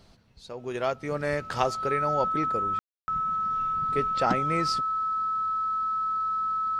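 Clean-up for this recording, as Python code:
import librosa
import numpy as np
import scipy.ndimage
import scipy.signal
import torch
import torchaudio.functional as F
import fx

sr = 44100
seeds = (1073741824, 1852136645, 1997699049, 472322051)

y = fx.notch(x, sr, hz=1300.0, q=30.0)
y = fx.fix_ambience(y, sr, seeds[0], print_start_s=0.0, print_end_s=0.5, start_s=2.79, end_s=3.08)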